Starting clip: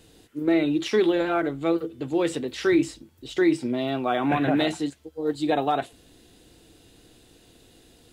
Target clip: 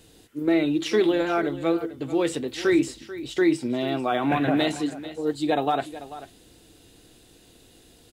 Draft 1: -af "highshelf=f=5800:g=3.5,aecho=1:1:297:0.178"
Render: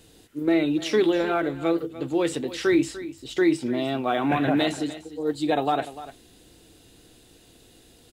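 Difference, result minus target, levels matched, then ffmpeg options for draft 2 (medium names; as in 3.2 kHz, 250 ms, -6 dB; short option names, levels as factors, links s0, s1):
echo 143 ms early
-af "highshelf=f=5800:g=3.5,aecho=1:1:440:0.178"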